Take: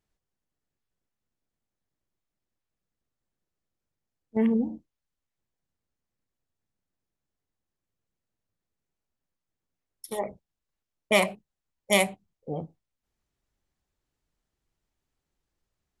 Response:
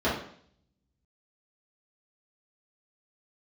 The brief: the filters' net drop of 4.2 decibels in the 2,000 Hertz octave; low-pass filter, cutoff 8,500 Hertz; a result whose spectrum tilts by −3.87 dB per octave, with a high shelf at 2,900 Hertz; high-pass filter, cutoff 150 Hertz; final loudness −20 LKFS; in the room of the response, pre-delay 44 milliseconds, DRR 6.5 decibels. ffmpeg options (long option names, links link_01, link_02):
-filter_complex "[0:a]highpass=150,lowpass=8500,equalizer=frequency=2000:width_type=o:gain=-3.5,highshelf=frequency=2900:gain=-3,asplit=2[link_01][link_02];[1:a]atrim=start_sample=2205,adelay=44[link_03];[link_02][link_03]afir=irnorm=-1:irlink=0,volume=-20.5dB[link_04];[link_01][link_04]amix=inputs=2:normalize=0,volume=8dB"